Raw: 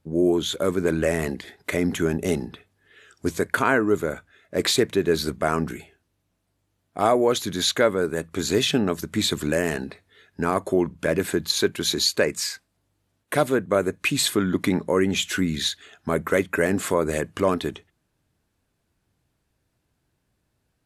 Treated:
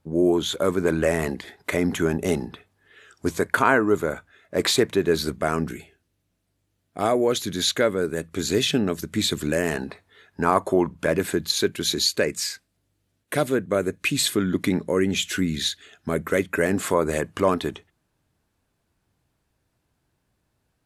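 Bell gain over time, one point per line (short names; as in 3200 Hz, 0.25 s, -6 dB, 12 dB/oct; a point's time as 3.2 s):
bell 950 Hz 1.1 oct
4.89 s +4 dB
5.74 s -5 dB
9.46 s -5 dB
9.87 s +6.5 dB
10.85 s +6.5 dB
11.55 s -5.5 dB
16.31 s -5.5 dB
16.94 s +2.5 dB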